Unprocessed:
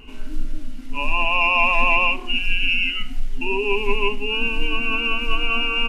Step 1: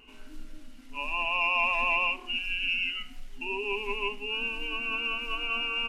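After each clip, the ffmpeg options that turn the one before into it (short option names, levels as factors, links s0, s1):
-af "lowshelf=f=250:g=-12,volume=0.398"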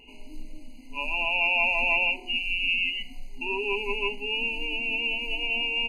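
-af "afftfilt=real='re*eq(mod(floor(b*sr/1024/1000),2),0)':imag='im*eq(mod(floor(b*sr/1024/1000),2),0)':win_size=1024:overlap=0.75,volume=1.5"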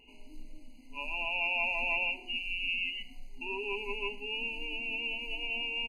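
-af "aecho=1:1:115:0.0841,volume=0.422"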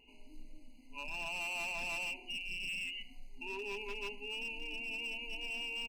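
-af "asoftclip=type=hard:threshold=0.0266,volume=0.596"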